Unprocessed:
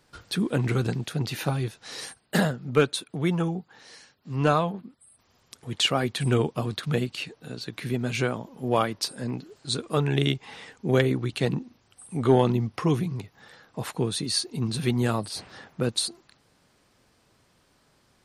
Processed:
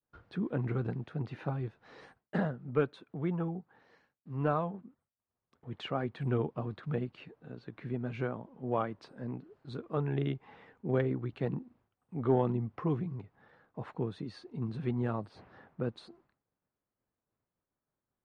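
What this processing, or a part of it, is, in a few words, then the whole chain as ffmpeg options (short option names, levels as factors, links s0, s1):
hearing-loss simulation: -af "lowpass=1500,agate=range=0.0224:threshold=0.002:ratio=3:detection=peak,volume=0.398"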